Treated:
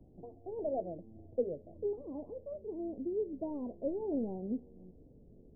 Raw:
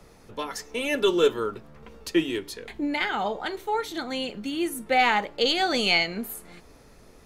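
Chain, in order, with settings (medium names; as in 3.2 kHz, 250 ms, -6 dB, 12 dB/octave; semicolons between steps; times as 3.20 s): gliding tape speed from 164% -> 97%; Gaussian low-pass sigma 20 samples; bass shelf 66 Hz -8 dB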